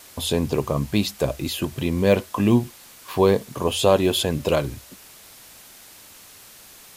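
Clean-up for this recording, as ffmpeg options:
-af "afwtdn=0.0056"

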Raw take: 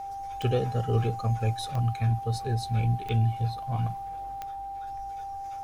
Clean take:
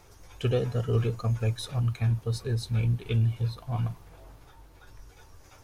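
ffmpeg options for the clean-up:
-af "adeclick=t=4,bandreject=f=790:w=30"

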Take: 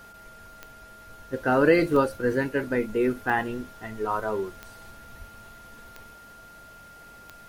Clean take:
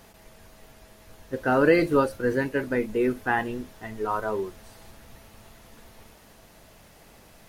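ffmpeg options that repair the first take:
-filter_complex "[0:a]adeclick=t=4,bandreject=f=1.4k:w=30,asplit=3[a][b][c];[a]afade=t=out:st=5.18:d=0.02[d];[b]highpass=f=140:w=0.5412,highpass=f=140:w=1.3066,afade=t=in:st=5.18:d=0.02,afade=t=out:st=5.3:d=0.02[e];[c]afade=t=in:st=5.3:d=0.02[f];[d][e][f]amix=inputs=3:normalize=0"

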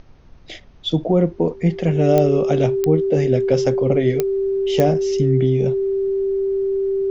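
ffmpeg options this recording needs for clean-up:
-af "adeclick=t=4,bandreject=f=390:w=30,agate=range=-21dB:threshold=-33dB"

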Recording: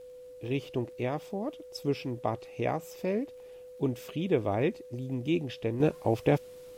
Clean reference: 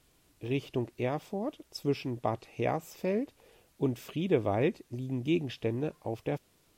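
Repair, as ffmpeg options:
-af "adeclick=t=4,bandreject=f=500:w=30,asetnsamples=n=441:p=0,asendcmd='5.8 volume volume -8.5dB',volume=0dB"

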